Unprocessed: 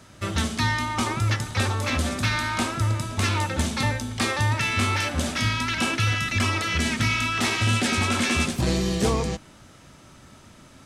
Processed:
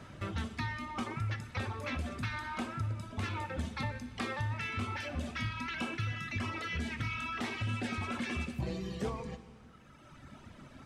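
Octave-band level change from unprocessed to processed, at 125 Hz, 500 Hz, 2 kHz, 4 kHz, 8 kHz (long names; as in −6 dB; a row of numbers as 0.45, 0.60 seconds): −12.5, −12.5, −13.5, −17.0, −23.0 decibels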